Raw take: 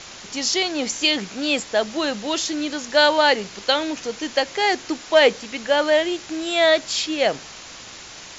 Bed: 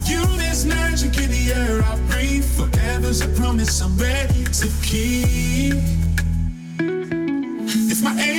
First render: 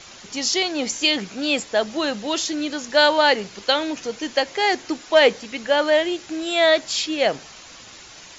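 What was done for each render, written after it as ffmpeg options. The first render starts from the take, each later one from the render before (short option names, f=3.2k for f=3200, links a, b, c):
-af "afftdn=nr=6:nf=-40"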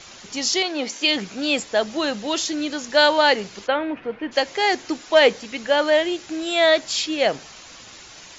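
-filter_complex "[0:a]asplit=3[a][b][c];[a]afade=t=out:st=0.62:d=0.02[d];[b]highpass=240,lowpass=5k,afade=t=in:st=0.62:d=0.02,afade=t=out:st=1.07:d=0.02[e];[c]afade=t=in:st=1.07:d=0.02[f];[d][e][f]amix=inputs=3:normalize=0,asplit=3[g][h][i];[g]afade=t=out:st=3.66:d=0.02[j];[h]lowpass=f=2.4k:w=0.5412,lowpass=f=2.4k:w=1.3066,afade=t=in:st=3.66:d=0.02,afade=t=out:st=4.31:d=0.02[k];[i]afade=t=in:st=4.31:d=0.02[l];[j][k][l]amix=inputs=3:normalize=0"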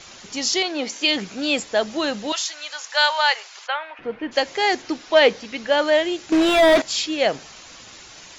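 -filter_complex "[0:a]asettb=1/sr,asplit=3[a][b][c];[a]atrim=end=2.324[d];[b]atrim=start=2.32:end=3.99,asetpts=PTS-STARTPTS,afade=t=in:d=0.004:c=qsin,afade=t=out:st=1.666:d=0.004:c=qsin,highpass=f=780:w=0.5412,highpass=f=780:w=1.3066[e];[c]atrim=start=3.986[f];[d][e]acrossfade=d=0.004:c1=hsin:c2=qsin[g];[g][f]acrossfade=d=0.004:c1=qsin:c2=hsin,asettb=1/sr,asplit=3[h][i][j];[h]atrim=end=4.824[k];[i]atrim=start=4.82:end=5.72,asetpts=PTS-STARTPTS,afade=t=in:d=0.004:c=qsin,afade=t=out:st=0.896:d=0.004:c=qsin,lowpass=f=6.3k:w=0.5412,lowpass=f=6.3k:w=1.3066[l];[j]atrim=start=5.716[m];[k][l]acrossfade=d=0.004:c1=hsin:c2=qsin[n];[n][m]acrossfade=d=0.004:c1=qsin:c2=hsin,asettb=1/sr,asplit=3[o][p][q];[o]atrim=end=6.324[r];[p]atrim=start=6.32:end=6.82,asetpts=PTS-STARTPTS,afade=t=in:d=0.004:c=qsin,afade=t=out:st=0.496:d=0.004:c=qsin,asplit=2[s][t];[t]highpass=f=720:p=1,volume=29dB,asoftclip=type=tanh:threshold=-6dB[u];[s][u]amix=inputs=2:normalize=0,lowpass=f=1.2k:p=1,volume=-6dB[v];[q]atrim=start=6.816[w];[r][v]acrossfade=d=0.004:c1=hsin:c2=qsin[x];[x][w]acrossfade=d=0.004:c1=qsin:c2=hsin"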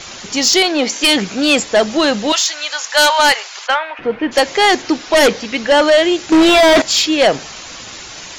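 -af "aeval=exprs='0.596*(cos(1*acos(clip(val(0)/0.596,-1,1)))-cos(1*PI/2))+0.299*(cos(5*acos(clip(val(0)/0.596,-1,1)))-cos(5*PI/2))+0.00376*(cos(8*acos(clip(val(0)/0.596,-1,1)))-cos(8*PI/2))':c=same"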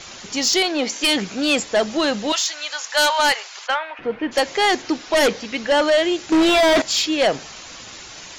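-af "volume=-6dB"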